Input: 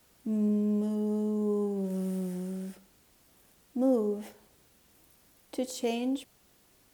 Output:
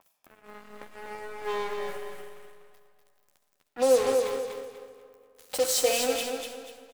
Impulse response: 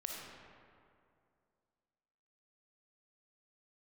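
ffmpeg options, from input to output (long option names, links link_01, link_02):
-filter_complex "[0:a]aeval=exprs='val(0)+0.5*0.0112*sgn(val(0))':channel_layout=same,highpass=frequency=470:width=0.5412,highpass=frequency=470:width=1.3066,afwtdn=0.00355,aecho=1:1:3.9:0.64,acompressor=mode=upward:threshold=-44dB:ratio=2.5,acrusher=bits=5:mix=0:aa=0.5,aecho=1:1:244|488|732|976:0.531|0.165|0.051|0.0158,asplit=2[link_01][link_02];[1:a]atrim=start_sample=2205,highshelf=frequency=5000:gain=12,adelay=12[link_03];[link_02][link_03]afir=irnorm=-1:irlink=0,volume=-8dB[link_04];[link_01][link_04]amix=inputs=2:normalize=0,adynamicequalizer=threshold=0.001:dfrequency=3500:dqfactor=0.7:tfrequency=3500:tqfactor=0.7:attack=5:release=100:ratio=0.375:range=2:mode=boostabove:tftype=highshelf,volume=4.5dB"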